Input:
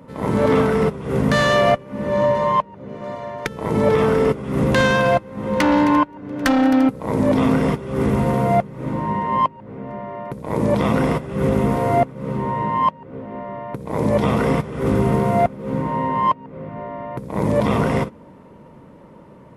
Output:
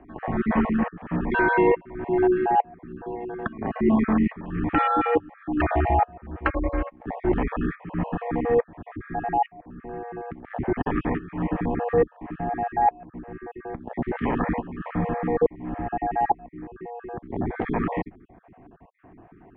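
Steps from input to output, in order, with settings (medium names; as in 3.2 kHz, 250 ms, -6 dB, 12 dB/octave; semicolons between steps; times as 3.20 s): random holes in the spectrogram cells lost 39%; mistuned SSB -220 Hz 320–2700 Hz; 6.39–7.06 s: upward expansion 1.5:1, over -38 dBFS; trim -1.5 dB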